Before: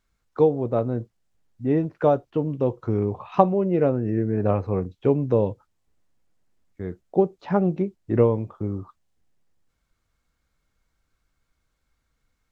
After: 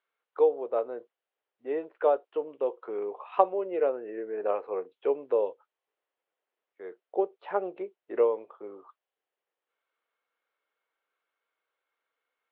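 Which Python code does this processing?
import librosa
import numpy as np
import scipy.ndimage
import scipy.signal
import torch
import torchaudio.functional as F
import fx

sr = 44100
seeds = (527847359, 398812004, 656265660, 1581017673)

y = scipy.signal.sosfilt(scipy.signal.cheby1(3, 1.0, [430.0, 3200.0], 'bandpass', fs=sr, output='sos'), x)
y = y * 10.0 ** (-3.5 / 20.0)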